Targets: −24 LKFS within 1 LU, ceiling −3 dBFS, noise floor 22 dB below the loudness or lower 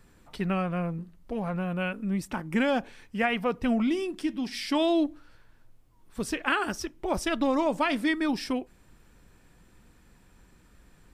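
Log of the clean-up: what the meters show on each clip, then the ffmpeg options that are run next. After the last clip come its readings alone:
integrated loudness −29.0 LKFS; sample peak −11.0 dBFS; target loudness −24.0 LKFS
→ -af "volume=5dB"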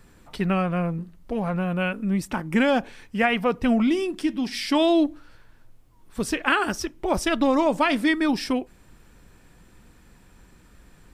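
integrated loudness −24.0 LKFS; sample peak −6.0 dBFS; background noise floor −54 dBFS

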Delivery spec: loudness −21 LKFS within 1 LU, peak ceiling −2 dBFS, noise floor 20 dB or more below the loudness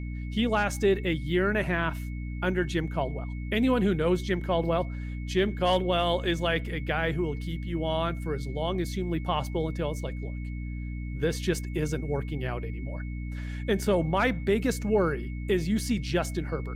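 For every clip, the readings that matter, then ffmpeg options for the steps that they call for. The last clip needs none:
mains hum 60 Hz; hum harmonics up to 300 Hz; level of the hum −32 dBFS; interfering tone 2,200 Hz; level of the tone −49 dBFS; integrated loudness −28.5 LKFS; sample peak −13.0 dBFS; target loudness −21.0 LKFS
→ -af "bandreject=frequency=60:width_type=h:width=4,bandreject=frequency=120:width_type=h:width=4,bandreject=frequency=180:width_type=h:width=4,bandreject=frequency=240:width_type=h:width=4,bandreject=frequency=300:width_type=h:width=4"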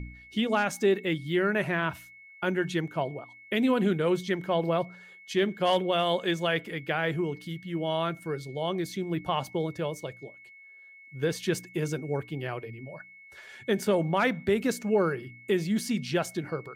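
mains hum none found; interfering tone 2,200 Hz; level of the tone −49 dBFS
→ -af "bandreject=frequency=2200:width=30"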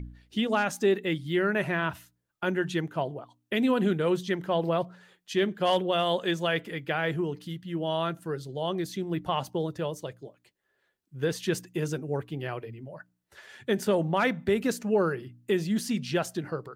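interfering tone none found; integrated loudness −29.0 LKFS; sample peak −14.0 dBFS; target loudness −21.0 LKFS
→ -af "volume=8dB"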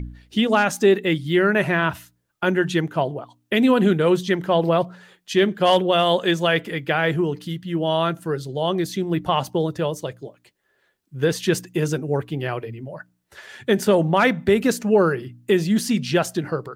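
integrated loudness −21.0 LKFS; sample peak −6.0 dBFS; background noise floor −69 dBFS

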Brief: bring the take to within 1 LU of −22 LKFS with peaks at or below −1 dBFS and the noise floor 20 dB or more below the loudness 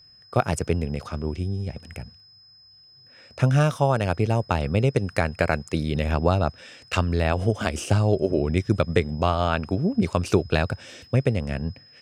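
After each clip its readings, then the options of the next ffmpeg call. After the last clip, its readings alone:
interfering tone 5,100 Hz; level of the tone −50 dBFS; integrated loudness −24.5 LKFS; sample peak −5.5 dBFS; target loudness −22.0 LKFS
→ -af "bandreject=frequency=5100:width=30"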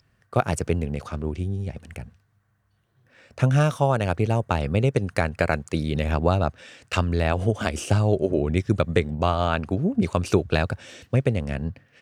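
interfering tone none found; integrated loudness −24.5 LKFS; sample peak −5.5 dBFS; target loudness −22.0 LKFS
→ -af "volume=2.5dB"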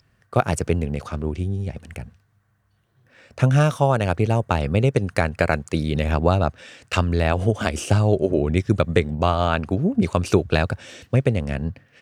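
integrated loudness −22.0 LKFS; sample peak −3.0 dBFS; background noise floor −64 dBFS

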